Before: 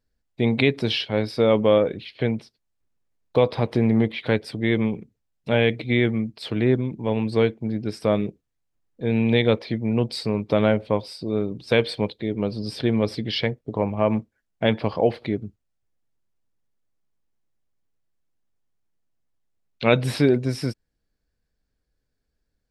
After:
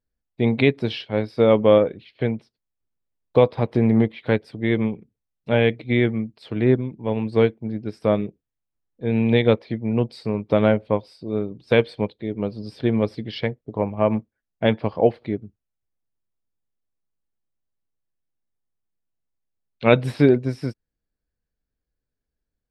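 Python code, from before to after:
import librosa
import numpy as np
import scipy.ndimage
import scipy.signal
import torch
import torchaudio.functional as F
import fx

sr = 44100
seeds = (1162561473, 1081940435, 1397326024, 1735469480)

y = fx.high_shelf(x, sr, hz=3400.0, db=-8.0)
y = fx.upward_expand(y, sr, threshold_db=-35.0, expansion=1.5)
y = F.gain(torch.from_numpy(y), 4.0).numpy()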